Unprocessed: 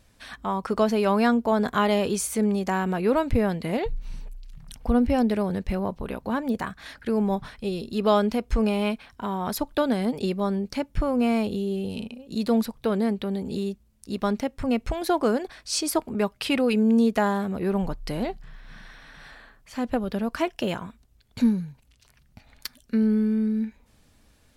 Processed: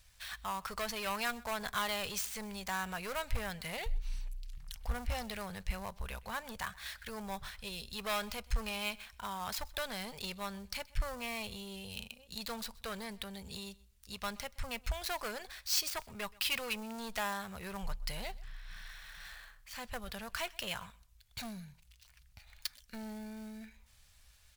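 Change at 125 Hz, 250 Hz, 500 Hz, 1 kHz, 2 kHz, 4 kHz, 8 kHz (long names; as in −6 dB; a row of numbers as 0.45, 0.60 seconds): −14.5, −23.0, −19.0, −11.5, −5.0, −3.0, −6.0 decibels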